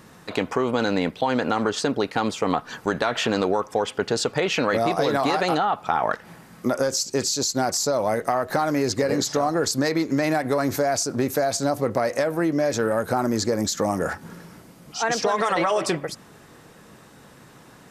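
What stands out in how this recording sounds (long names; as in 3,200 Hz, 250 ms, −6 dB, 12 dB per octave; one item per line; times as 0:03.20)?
background noise floor −49 dBFS
spectral slope −4.0 dB per octave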